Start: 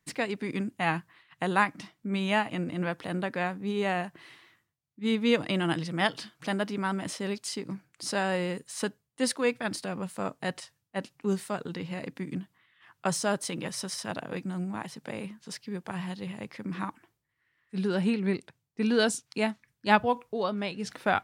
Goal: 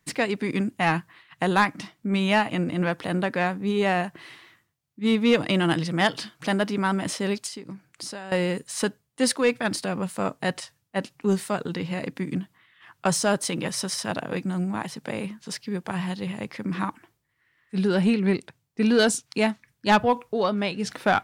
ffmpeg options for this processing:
-filter_complex "[0:a]asettb=1/sr,asplit=3[a][b][c];[a]atrim=end=7.464[d];[b]atrim=start=7.46:end=8.32,asetpts=PTS-STARTPTS,afade=t=in:d=0.004:c=qsin,afade=t=out:st=0.856:d=0.004:c=qsin,acompressor=threshold=-40dB:ratio=20[e];[c]atrim=start=8.316[f];[d][e]acrossfade=d=0.004:c1=hsin:c2=qsin[g];[g][f]acrossfade=d=0.004:c1=qsin:c2=hsin,asoftclip=type=tanh:threshold=-17dB,volume=6.5dB"

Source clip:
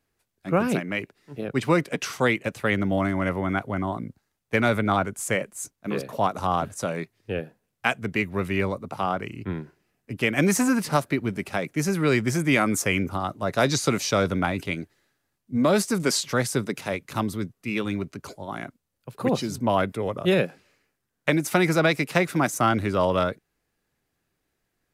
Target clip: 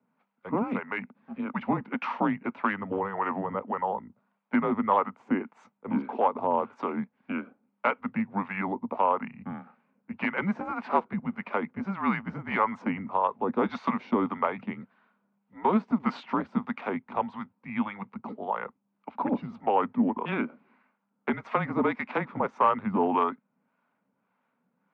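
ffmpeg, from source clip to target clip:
-filter_complex "[0:a]acompressor=threshold=-37dB:ratio=1.5,acrossover=split=720[a][b];[a]aeval=exprs='val(0)*(1-0.7/2+0.7/2*cos(2*PI*1.7*n/s))':c=same[c];[b]aeval=exprs='val(0)*(1-0.7/2-0.7/2*cos(2*PI*1.7*n/s))':c=same[d];[c][d]amix=inputs=2:normalize=0,afreqshift=-200,aeval=exprs='clip(val(0),-1,0.0501)':c=same,highpass=f=200:w=0.5412,highpass=f=200:w=1.3066,equalizer=f=240:t=q:w=4:g=9,equalizer=f=340:t=q:w=4:g=-9,equalizer=f=910:t=q:w=4:g=7,equalizer=f=1.8k:t=q:w=4:g=-8,lowpass=f=2.2k:w=0.5412,lowpass=f=2.2k:w=1.3066,volume=8.5dB"

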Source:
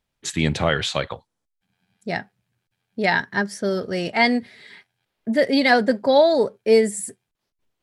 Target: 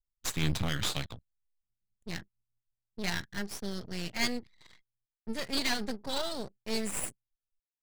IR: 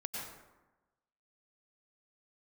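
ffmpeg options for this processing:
-filter_complex "[0:a]firequalizer=gain_entry='entry(120,0);entry(330,-20);entry(3600,0)':delay=0.05:min_phase=1,asplit=2[a][b];[b]acrusher=samples=9:mix=1:aa=0.000001,volume=-8dB[c];[a][c]amix=inputs=2:normalize=0,aeval=exprs='max(val(0),0)':c=same,anlmdn=0.00158,volume=-1.5dB"

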